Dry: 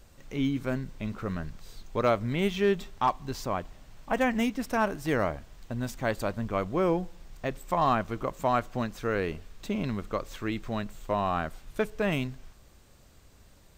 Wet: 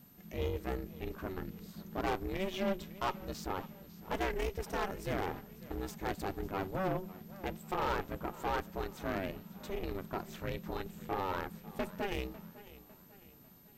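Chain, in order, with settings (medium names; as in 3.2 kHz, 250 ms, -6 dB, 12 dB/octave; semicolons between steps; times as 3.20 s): ring modulator 190 Hz; valve stage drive 23 dB, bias 0.75; whistle 13 kHz -62 dBFS; in parallel at -4 dB: sine folder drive 6 dB, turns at -19 dBFS; on the sum: modulated delay 550 ms, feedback 45%, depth 104 cents, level -18 dB; trim -8.5 dB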